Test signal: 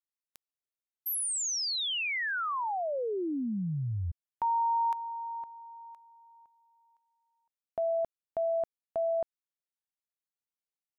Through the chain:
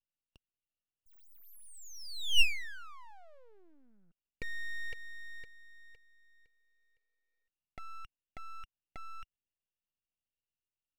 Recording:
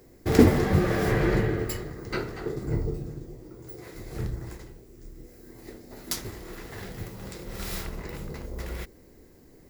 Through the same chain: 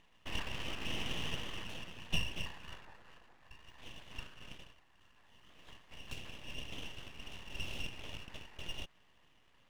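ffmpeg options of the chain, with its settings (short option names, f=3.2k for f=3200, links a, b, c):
-af "acompressor=threshold=-29dB:ratio=2.5:attack=1.3:release=250:knee=6:detection=peak,bandpass=f=1.4k:t=q:w=15:csg=0,aeval=exprs='abs(val(0))':c=same,volume=17.5dB"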